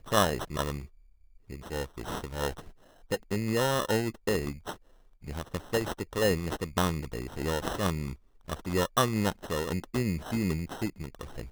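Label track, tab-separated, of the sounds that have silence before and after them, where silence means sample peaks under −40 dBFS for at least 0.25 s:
1.500000	2.690000	sound
3.110000	4.740000	sound
5.240000	8.140000	sound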